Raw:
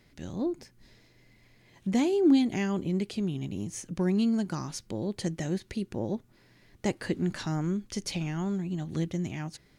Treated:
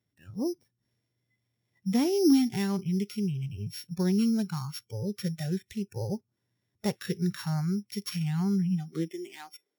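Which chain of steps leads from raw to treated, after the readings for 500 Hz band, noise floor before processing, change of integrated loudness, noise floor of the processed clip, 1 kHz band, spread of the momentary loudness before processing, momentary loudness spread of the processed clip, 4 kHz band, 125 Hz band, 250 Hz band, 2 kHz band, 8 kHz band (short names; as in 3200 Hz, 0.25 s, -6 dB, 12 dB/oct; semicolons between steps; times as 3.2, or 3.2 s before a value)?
-1.5 dB, -62 dBFS, +0.5 dB, -81 dBFS, -2.0 dB, 12 LU, 13 LU, +1.0 dB, +2.0 dB, 0.0 dB, -3.5 dB, -1.0 dB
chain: sample sorter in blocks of 8 samples; high-pass sweep 98 Hz -> 410 Hz, 8.1–9.52; spectral noise reduction 21 dB; gain -1 dB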